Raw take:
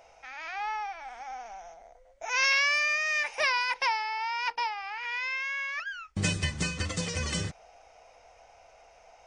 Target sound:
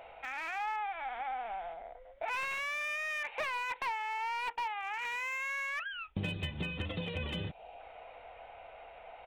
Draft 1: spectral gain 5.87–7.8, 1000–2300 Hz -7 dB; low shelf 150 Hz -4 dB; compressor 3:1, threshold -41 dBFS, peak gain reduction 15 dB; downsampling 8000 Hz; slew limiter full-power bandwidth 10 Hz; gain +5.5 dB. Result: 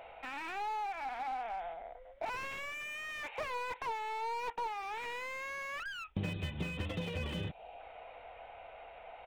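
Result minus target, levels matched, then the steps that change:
slew limiter: distortion +9 dB
change: slew limiter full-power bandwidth 24.5 Hz

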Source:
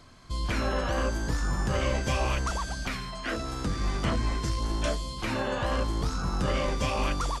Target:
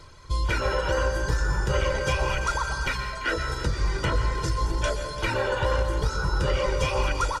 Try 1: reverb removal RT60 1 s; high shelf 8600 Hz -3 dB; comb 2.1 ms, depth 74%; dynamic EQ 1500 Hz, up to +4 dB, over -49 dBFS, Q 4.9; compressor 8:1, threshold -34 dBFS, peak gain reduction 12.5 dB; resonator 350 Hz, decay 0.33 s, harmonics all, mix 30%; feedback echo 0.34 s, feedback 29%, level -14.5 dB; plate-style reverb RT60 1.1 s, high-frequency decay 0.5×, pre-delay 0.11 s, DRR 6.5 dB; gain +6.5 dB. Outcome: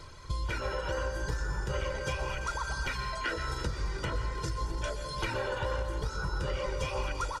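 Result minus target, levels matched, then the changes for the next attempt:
compressor: peak gain reduction +9 dB
change: compressor 8:1, threshold -23.5 dBFS, peak gain reduction 3.5 dB

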